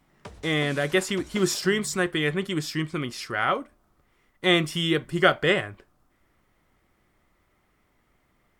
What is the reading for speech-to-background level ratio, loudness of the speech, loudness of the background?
19.5 dB, -25.0 LUFS, -44.5 LUFS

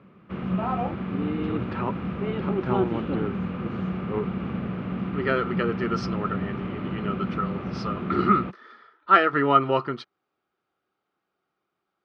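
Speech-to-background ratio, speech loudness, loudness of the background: 4.0 dB, -26.0 LUFS, -30.0 LUFS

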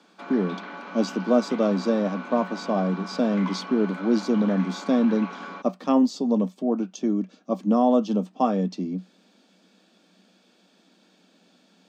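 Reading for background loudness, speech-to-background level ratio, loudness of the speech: -37.5 LUFS, 13.0 dB, -24.5 LUFS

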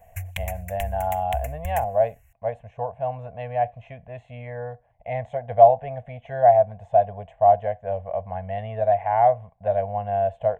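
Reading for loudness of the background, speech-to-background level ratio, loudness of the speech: -34.5 LUFS, 11.5 dB, -23.0 LUFS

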